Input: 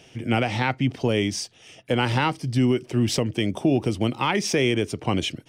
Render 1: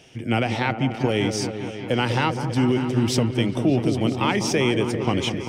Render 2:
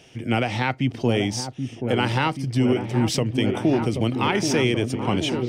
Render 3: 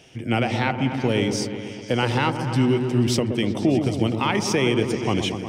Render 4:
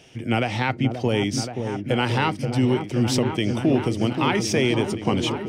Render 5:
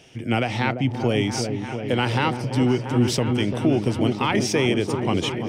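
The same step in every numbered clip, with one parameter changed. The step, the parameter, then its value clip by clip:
repeats that get brighter, time: 0.198, 0.78, 0.122, 0.528, 0.342 s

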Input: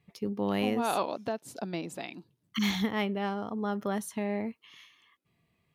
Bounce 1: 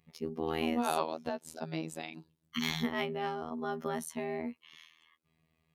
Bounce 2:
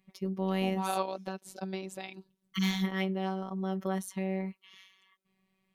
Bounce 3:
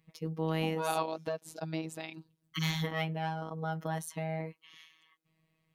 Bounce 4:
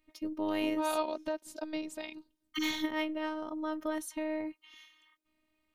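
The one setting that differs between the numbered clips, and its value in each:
robotiser, frequency: 80, 190, 160, 310 Hz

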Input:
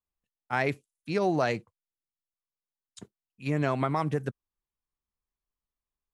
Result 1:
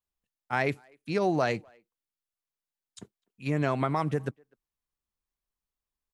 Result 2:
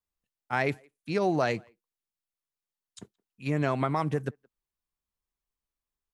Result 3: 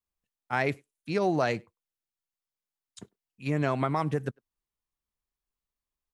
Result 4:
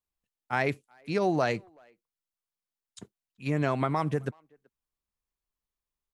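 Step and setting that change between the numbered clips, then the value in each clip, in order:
speakerphone echo, time: 0.25, 0.17, 0.1, 0.38 s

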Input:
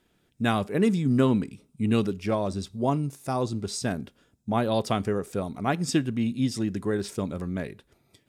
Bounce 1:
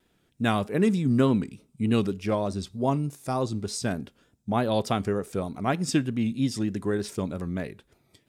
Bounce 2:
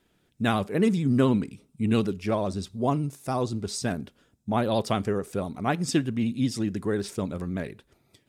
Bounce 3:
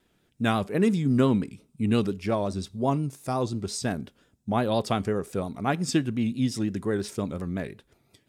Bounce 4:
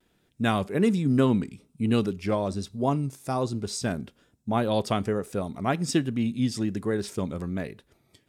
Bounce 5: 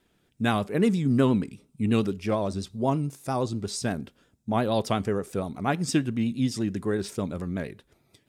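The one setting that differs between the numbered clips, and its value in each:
vibrato, rate: 3.3, 16, 5.7, 1.2, 8.5 Hz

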